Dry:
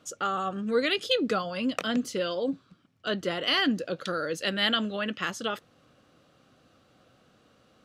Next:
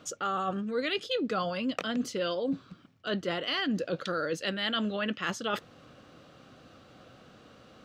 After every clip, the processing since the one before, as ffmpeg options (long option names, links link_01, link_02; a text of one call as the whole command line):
ffmpeg -i in.wav -af "equalizer=frequency=11000:width_type=o:width=0.96:gain=-8.5,areverse,acompressor=threshold=-36dB:ratio=6,areverse,volume=7.5dB" out.wav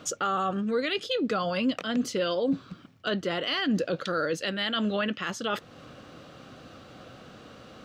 ffmpeg -i in.wav -af "alimiter=level_in=1dB:limit=-24dB:level=0:latency=1:release=255,volume=-1dB,volume=6.5dB" out.wav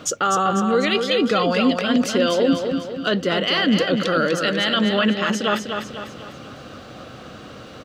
ffmpeg -i in.wav -af "aecho=1:1:248|496|744|992|1240|1488:0.501|0.241|0.115|0.0554|0.0266|0.0128,volume=8dB" out.wav